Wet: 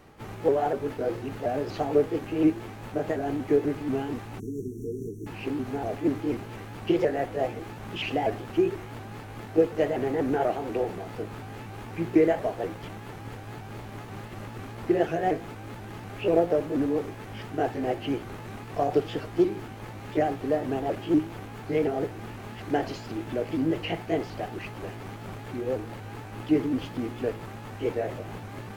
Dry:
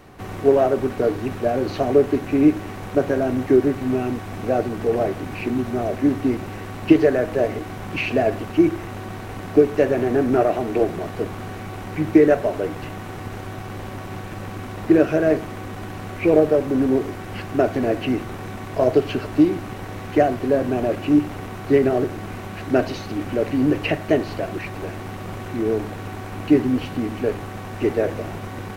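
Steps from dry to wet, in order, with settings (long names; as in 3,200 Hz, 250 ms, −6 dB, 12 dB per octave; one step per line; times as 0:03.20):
pitch shifter swept by a sawtooth +3 semitones, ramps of 243 ms
time-frequency box erased 0:04.40–0:05.26, 460–5,500 Hz
level −6.5 dB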